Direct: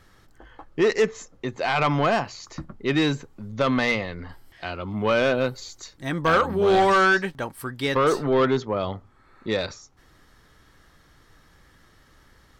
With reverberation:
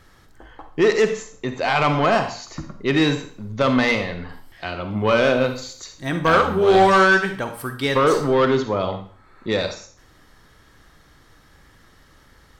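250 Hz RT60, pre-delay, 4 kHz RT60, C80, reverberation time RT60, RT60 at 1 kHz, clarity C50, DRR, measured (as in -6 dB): 0.45 s, 39 ms, 0.45 s, 12.5 dB, 0.50 s, 0.50 s, 8.5 dB, 7.0 dB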